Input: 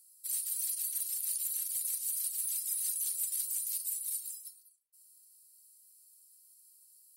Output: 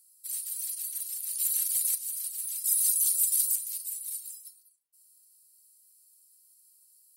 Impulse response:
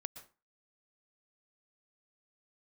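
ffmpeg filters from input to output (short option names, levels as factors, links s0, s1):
-filter_complex "[0:a]asplit=3[s0][s1][s2];[s0]afade=t=out:st=1.37:d=0.02[s3];[s1]acontrast=87,afade=t=in:st=1.37:d=0.02,afade=t=out:st=1.94:d=0.02[s4];[s2]afade=t=in:st=1.94:d=0.02[s5];[s3][s4][s5]amix=inputs=3:normalize=0,asettb=1/sr,asplit=3[s6][s7][s8];[s6]atrim=end=2.644[s9];[s7]atrim=start=2.64:end=3.56,asetpts=PTS-STARTPTS,afade=t=in:d=0.004:c=qsin,afade=t=out:st=0.916:d=0.004:c=qsin,highshelf=f=2800:g=9.5[s10];[s8]atrim=start=3.556[s11];[s9][s10]acrossfade=d=0.004:c1=hsin:c2=qsin[s12];[s12][s11]acrossfade=d=0.004:c1=qsin:c2=hsin"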